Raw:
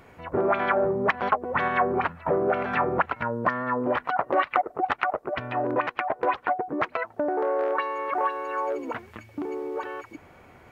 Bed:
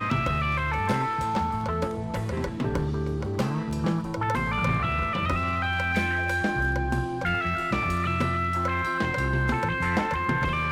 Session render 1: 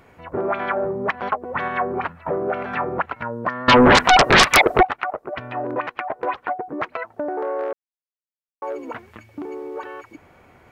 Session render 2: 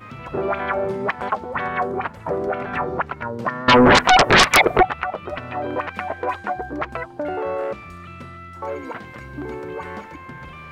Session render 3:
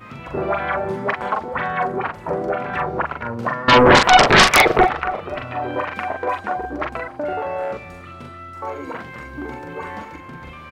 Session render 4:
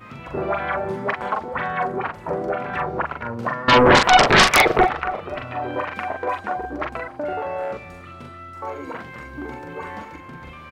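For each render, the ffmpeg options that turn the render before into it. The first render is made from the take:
-filter_complex "[0:a]asettb=1/sr,asplit=3[a][b][c];[a]atrim=end=3.684[d];[b]atrim=start=3.68:end=4.83,asetpts=PTS-STARTPTS,afade=t=in:d=0.004:c=qsin,afade=t=out:st=1.146:d=0.004:c=qsin,aeval=exprs='0.422*sin(PI/2*7.08*val(0)/0.422)':c=same[e];[c]atrim=start=4.826[f];[d][e]acrossfade=d=0.004:c1=hsin:c2=qsin[g];[g][f]acrossfade=d=0.004:c1=qsin:c2=hsin,asplit=3[h][i][j];[h]atrim=end=7.73,asetpts=PTS-STARTPTS,afade=t=out:st=7.726:d=0.004:c=hsin[k];[i]atrim=start=7.73:end=8.62,asetpts=PTS-STARTPTS,volume=0[l];[j]atrim=start=8.62,asetpts=PTS-STARTPTS,afade=t=in:d=0.004:c=hsin[m];[k][l][m]concat=n=3:v=0:a=1"
-filter_complex "[1:a]volume=-12dB[a];[0:a][a]amix=inputs=2:normalize=0"
-filter_complex "[0:a]asplit=2[a][b];[b]adelay=42,volume=-3.5dB[c];[a][c]amix=inputs=2:normalize=0,asplit=2[d][e];[e]adelay=279,lowpass=f=2.1k:p=1,volume=-19dB,asplit=2[f][g];[g]adelay=279,lowpass=f=2.1k:p=1,volume=0.44,asplit=2[h][i];[i]adelay=279,lowpass=f=2.1k:p=1,volume=0.44[j];[d][f][h][j]amix=inputs=4:normalize=0"
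-af "volume=-2dB"

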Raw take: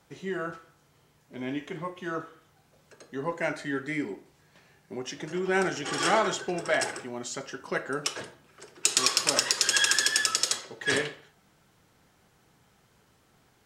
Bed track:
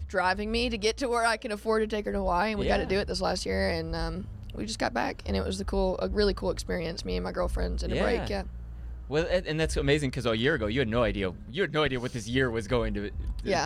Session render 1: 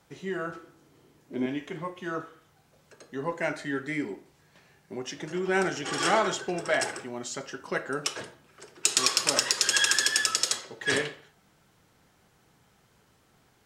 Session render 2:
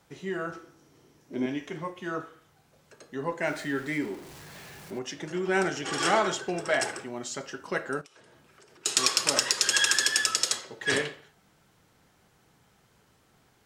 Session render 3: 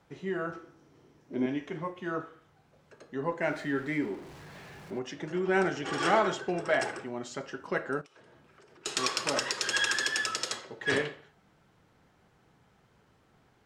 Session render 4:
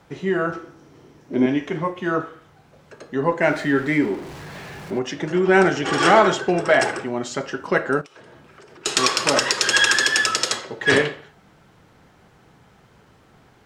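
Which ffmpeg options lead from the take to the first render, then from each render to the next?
-filter_complex "[0:a]asettb=1/sr,asplit=3[a][b][c];[a]atrim=end=0.554[d];[b]atrim=start=0.55:end=1.46,asetpts=PTS-STARTPTS,afade=t=in:d=0.004:c=qsin,afade=t=out:st=0.906:d=0.004:c=qsin,equalizer=f=320:w=1.5:g=12.5[e];[c]atrim=start=1.456[f];[d][e]acrossfade=d=0.004:c1=hsin:c2=qsin[g];[g][f]acrossfade=d=0.004:c1=qsin:c2=hsin"
-filter_complex "[0:a]asettb=1/sr,asplit=3[a][b][c];[a]atrim=end=0.484[d];[b]atrim=start=0.48:end=1.92,asetpts=PTS-STARTPTS,afade=t=in:d=0.004:c=qsin,afade=t=out:st=1.436:d=0.004:c=qsin,equalizer=f=5.7k:t=o:w=0.23:g=8[e];[c]atrim=start=1.916[f];[d][e]acrossfade=d=0.004:c1=hsin:c2=qsin[g];[g][f]acrossfade=d=0.004:c1=qsin:c2=hsin,asettb=1/sr,asplit=3[h][i][j];[h]atrim=end=3.474[k];[i]atrim=start=3.47:end=4.99,asetpts=PTS-STARTPTS,afade=t=in:d=0.004:c=qsin,afade=t=out:st=1.516:d=0.004:c=qsin,aeval=exprs='val(0)+0.5*0.00794*sgn(val(0))':c=same[l];[j]atrim=start=4.986[m];[k][l]acrossfade=d=0.004:c1=hsin:c2=qsin[n];[n][m]acrossfade=d=0.004:c1=qsin:c2=hsin,asettb=1/sr,asplit=3[o][p][q];[o]atrim=end=8.014[r];[p]atrim=start=8.01:end=8.86,asetpts=PTS-STARTPTS,afade=t=in:d=0.004:c=qsin,afade=t=out:st=0.846:d=0.004:c=qsin,acompressor=threshold=-51dB:ratio=16:attack=3.2:release=140:knee=1:detection=peak[s];[q]atrim=start=8.856[t];[r][s]acrossfade=d=0.004:c1=hsin:c2=qsin[u];[u][t]acrossfade=d=0.004:c1=qsin:c2=hsin"
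-af "lowpass=f=2.3k:p=1"
-af "volume=11.5dB,alimiter=limit=-2dB:level=0:latency=1"

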